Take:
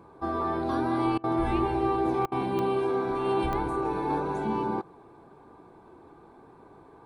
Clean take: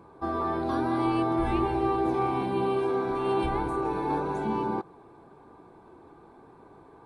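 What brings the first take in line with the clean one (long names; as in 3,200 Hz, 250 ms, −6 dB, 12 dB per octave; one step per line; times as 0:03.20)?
click removal
repair the gap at 0:01.18/0:02.26, 57 ms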